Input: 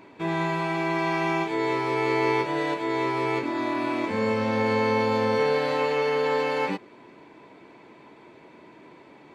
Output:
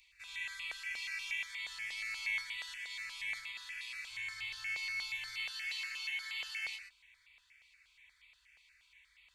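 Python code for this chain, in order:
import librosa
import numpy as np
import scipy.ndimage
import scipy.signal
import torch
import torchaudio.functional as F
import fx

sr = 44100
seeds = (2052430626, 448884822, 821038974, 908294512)

p1 = scipy.signal.sosfilt(scipy.signal.cheby2(4, 80, [210.0, 570.0], 'bandstop', fs=sr, output='sos'), x)
p2 = p1 + fx.echo_single(p1, sr, ms=122, db=-6.0, dry=0)
y = fx.phaser_held(p2, sr, hz=8.4, low_hz=410.0, high_hz=1600.0)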